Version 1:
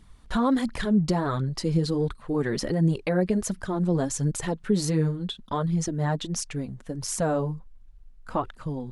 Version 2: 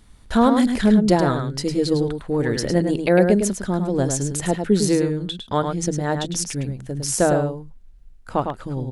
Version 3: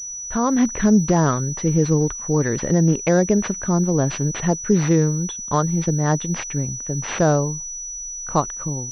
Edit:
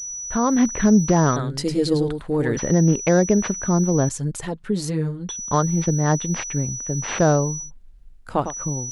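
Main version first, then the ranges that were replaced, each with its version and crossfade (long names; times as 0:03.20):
3
0:01.36–0:02.57: punch in from 2
0:04.09–0:05.29: punch in from 1
0:07.66–0:08.50: punch in from 2, crossfade 0.10 s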